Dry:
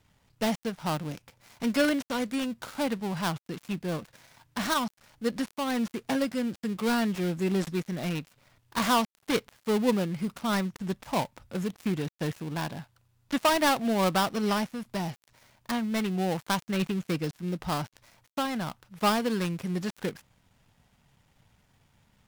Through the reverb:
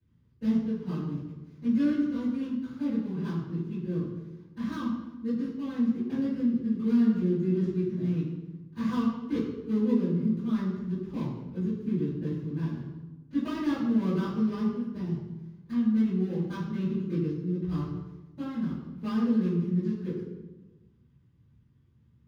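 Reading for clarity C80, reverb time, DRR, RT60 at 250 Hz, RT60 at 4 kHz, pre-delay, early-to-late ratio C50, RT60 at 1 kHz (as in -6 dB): 1.5 dB, 1.1 s, -16.0 dB, 1.5 s, 0.75 s, 4 ms, -0.5 dB, 1.0 s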